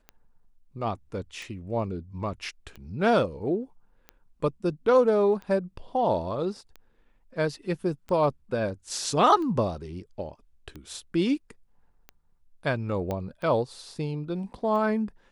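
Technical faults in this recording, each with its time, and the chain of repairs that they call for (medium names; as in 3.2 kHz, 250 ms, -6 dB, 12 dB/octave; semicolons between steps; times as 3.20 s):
tick 45 rpm -27 dBFS
13.11 s: pop -18 dBFS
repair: de-click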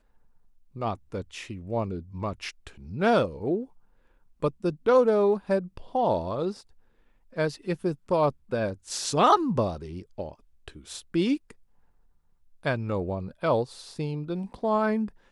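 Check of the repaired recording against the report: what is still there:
nothing left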